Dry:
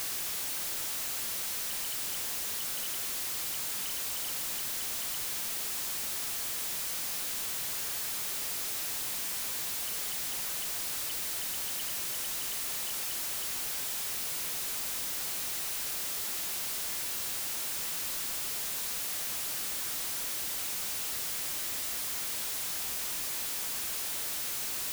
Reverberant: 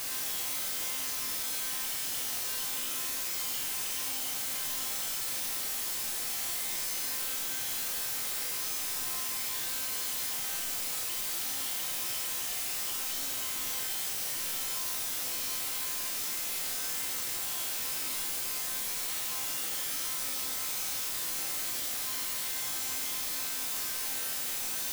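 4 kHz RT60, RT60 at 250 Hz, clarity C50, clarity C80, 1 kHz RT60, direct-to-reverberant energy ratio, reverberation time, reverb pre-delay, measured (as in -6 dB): 1.1 s, 1.1 s, 3.0 dB, 5.5 dB, 1.1 s, -1.0 dB, 1.1 s, 4 ms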